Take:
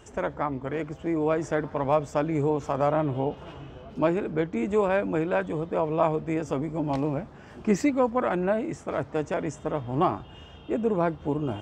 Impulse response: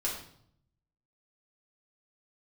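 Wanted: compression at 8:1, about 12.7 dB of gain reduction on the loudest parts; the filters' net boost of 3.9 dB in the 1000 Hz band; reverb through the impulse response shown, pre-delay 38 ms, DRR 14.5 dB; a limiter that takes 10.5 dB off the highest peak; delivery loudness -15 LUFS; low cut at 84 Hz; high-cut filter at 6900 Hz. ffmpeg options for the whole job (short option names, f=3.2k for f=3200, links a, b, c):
-filter_complex "[0:a]highpass=84,lowpass=6.9k,equalizer=f=1k:t=o:g=5,acompressor=threshold=-29dB:ratio=8,alimiter=level_in=3dB:limit=-24dB:level=0:latency=1,volume=-3dB,asplit=2[a][b];[1:a]atrim=start_sample=2205,adelay=38[c];[b][c]afir=irnorm=-1:irlink=0,volume=-19dB[d];[a][d]amix=inputs=2:normalize=0,volume=23dB"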